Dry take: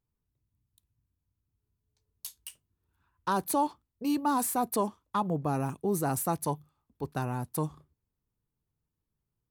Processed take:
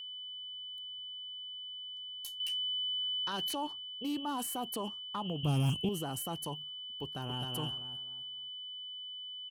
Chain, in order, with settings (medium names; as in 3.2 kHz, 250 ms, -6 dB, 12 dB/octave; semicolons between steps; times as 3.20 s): whistle 3 kHz -37 dBFS; 2.40–3.55 s: high-order bell 3.1 kHz +9.5 dB 2.3 oct; peak limiter -23.5 dBFS, peak gain reduction 10 dB; 5.43–5.89 s: tone controls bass +15 dB, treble +13 dB; 7.03–7.51 s: echo throw 260 ms, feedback 30%, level -3 dB; loudspeaker Doppler distortion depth 0.14 ms; trim -4.5 dB